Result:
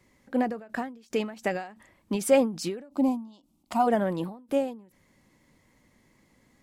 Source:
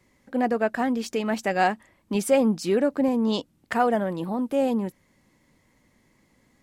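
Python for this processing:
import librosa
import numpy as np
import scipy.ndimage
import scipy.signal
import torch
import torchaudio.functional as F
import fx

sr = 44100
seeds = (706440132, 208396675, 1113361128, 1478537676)

y = fx.fixed_phaser(x, sr, hz=460.0, stages=6, at=(2.88, 3.86), fade=0.02)
y = fx.end_taper(y, sr, db_per_s=120.0)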